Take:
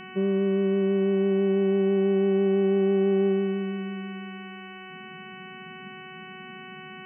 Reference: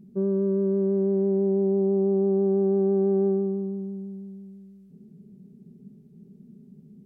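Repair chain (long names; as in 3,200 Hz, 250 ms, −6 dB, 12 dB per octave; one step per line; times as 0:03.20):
hum removal 373.5 Hz, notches 8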